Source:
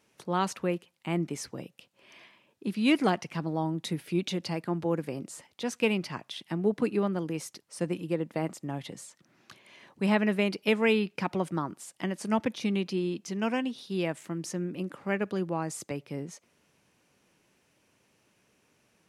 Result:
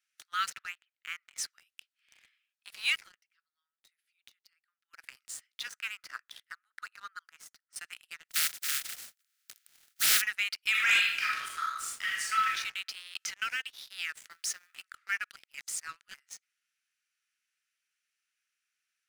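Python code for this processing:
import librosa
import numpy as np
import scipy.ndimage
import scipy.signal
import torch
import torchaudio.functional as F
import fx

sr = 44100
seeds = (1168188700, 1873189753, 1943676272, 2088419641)

y = fx.lowpass(x, sr, hz=3000.0, slope=12, at=(0.49, 1.37), fade=0.02)
y = fx.high_shelf_res(y, sr, hz=2000.0, db=-8.0, q=1.5, at=(5.68, 7.76))
y = fx.spec_flatten(y, sr, power=0.11, at=(8.29, 10.2), fade=0.02)
y = fx.reverb_throw(y, sr, start_s=10.7, length_s=1.79, rt60_s=0.91, drr_db=-5.0)
y = fx.band_squash(y, sr, depth_pct=100, at=(13.15, 13.72))
y = fx.law_mismatch(y, sr, coded='mu', at=(14.3, 14.82))
y = fx.edit(y, sr, fx.fade_down_up(start_s=2.9, length_s=2.16, db=-19.0, fade_s=0.18, curve='qsin'),
    fx.reverse_span(start_s=15.36, length_s=0.78), tone=tone)
y = scipy.signal.sosfilt(scipy.signal.cheby1(6, 1.0, 1300.0, 'highpass', fs=sr, output='sos'), y)
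y = fx.leveller(y, sr, passes=3)
y = F.gain(torch.from_numpy(y), -6.5).numpy()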